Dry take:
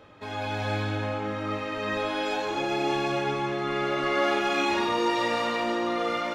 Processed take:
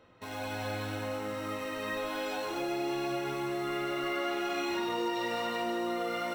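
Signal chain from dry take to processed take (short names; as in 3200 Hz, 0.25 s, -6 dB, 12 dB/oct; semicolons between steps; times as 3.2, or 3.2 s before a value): in parallel at -5 dB: requantised 6-bit, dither none; on the sum: ripple EQ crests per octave 2, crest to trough 9 dB; compressor 3:1, threshold -22 dBFS, peak gain reduction 6 dB; gain -8.5 dB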